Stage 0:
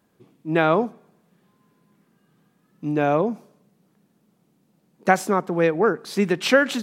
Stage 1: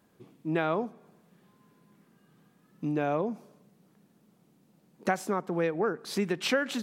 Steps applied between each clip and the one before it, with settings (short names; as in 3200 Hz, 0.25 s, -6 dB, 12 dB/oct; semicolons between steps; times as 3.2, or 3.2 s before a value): compressor 2:1, threshold -32 dBFS, peak gain reduction 12 dB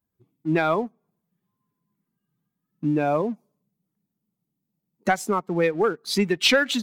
per-bin expansion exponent 1.5; dynamic EQ 3600 Hz, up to +7 dB, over -49 dBFS, Q 0.82; sample leveller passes 1; gain +5 dB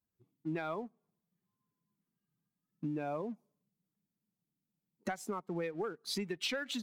compressor 5:1, threshold -26 dBFS, peak gain reduction 10.5 dB; gain -8.5 dB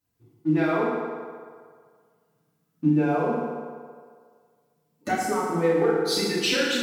FDN reverb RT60 1.9 s, low-frequency decay 0.75×, high-frequency decay 0.65×, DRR -8.5 dB; gain +5.5 dB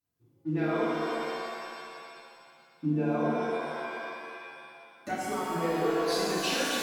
shimmer reverb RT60 2.2 s, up +7 st, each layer -2 dB, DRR 3 dB; gain -8.5 dB